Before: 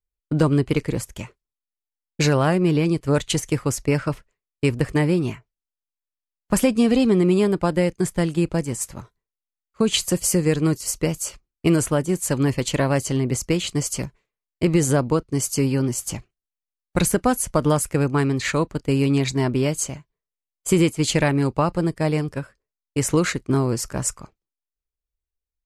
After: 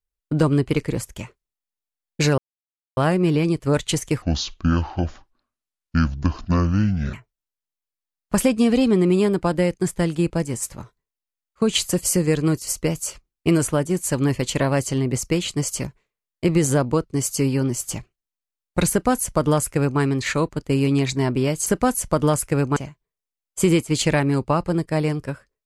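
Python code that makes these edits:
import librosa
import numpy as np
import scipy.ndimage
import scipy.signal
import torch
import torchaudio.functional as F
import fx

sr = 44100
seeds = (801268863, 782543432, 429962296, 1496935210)

y = fx.edit(x, sr, fx.insert_silence(at_s=2.38, length_s=0.59),
    fx.speed_span(start_s=3.63, length_s=1.69, speed=0.58),
    fx.duplicate(start_s=17.09, length_s=1.1, to_s=19.85), tone=tone)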